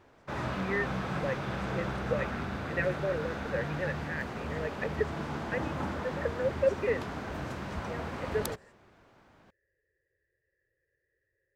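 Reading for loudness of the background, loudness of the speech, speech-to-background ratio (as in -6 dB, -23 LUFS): -36.0 LUFS, -35.5 LUFS, 0.5 dB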